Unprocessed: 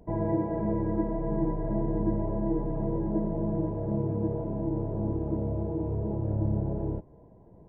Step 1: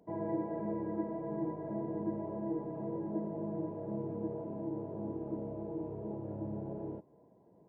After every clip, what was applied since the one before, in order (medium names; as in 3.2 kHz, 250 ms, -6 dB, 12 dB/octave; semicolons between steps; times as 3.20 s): high-pass 190 Hz 12 dB/octave; trim -6.5 dB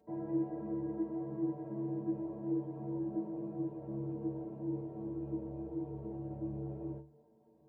inharmonic resonator 67 Hz, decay 0.48 s, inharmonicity 0.03; trim +7.5 dB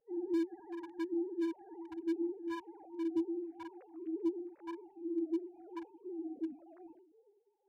formants replaced by sine waves; hard clipper -33.5 dBFS, distortion -9 dB; phase shifter stages 2, 1 Hz, lowest notch 240–1400 Hz; trim +7 dB